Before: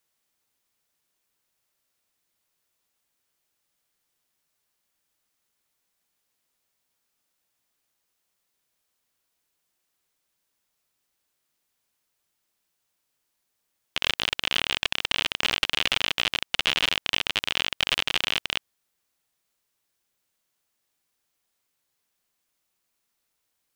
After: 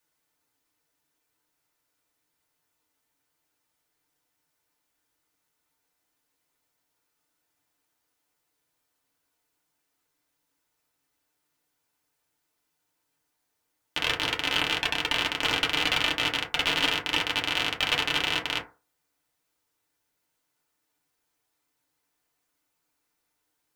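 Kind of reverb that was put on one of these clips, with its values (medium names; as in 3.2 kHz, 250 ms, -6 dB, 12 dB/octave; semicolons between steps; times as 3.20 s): FDN reverb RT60 0.33 s, low-frequency decay 0.9×, high-frequency decay 0.35×, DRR -3.5 dB; trim -3 dB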